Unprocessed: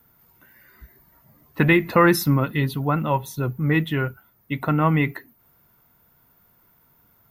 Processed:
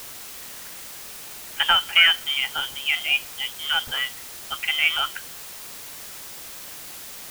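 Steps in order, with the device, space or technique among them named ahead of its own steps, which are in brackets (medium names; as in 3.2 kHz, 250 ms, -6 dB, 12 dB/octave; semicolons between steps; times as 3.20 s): scrambled radio voice (band-pass 380–2900 Hz; frequency inversion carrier 3.4 kHz; white noise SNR 12 dB); trim +1.5 dB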